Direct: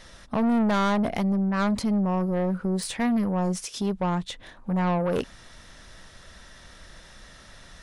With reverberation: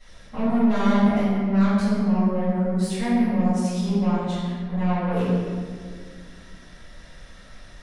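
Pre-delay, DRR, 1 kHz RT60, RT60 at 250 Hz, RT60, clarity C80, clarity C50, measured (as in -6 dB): 4 ms, -16.0 dB, 1.7 s, 3.3 s, 2.0 s, -0.5 dB, -3.0 dB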